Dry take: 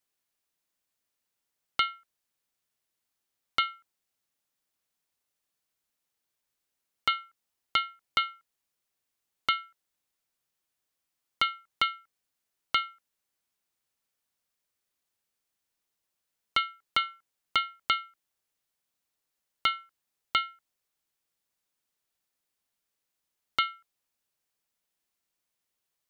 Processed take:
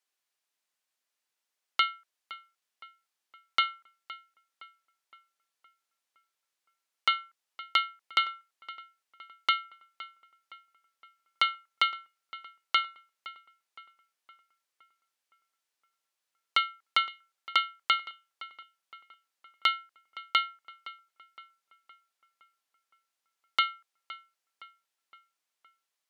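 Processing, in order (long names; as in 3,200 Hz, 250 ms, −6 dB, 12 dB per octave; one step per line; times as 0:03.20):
meter weighting curve A
feedback echo with a low-pass in the loop 515 ms, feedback 53%, low-pass 3,300 Hz, level −16.5 dB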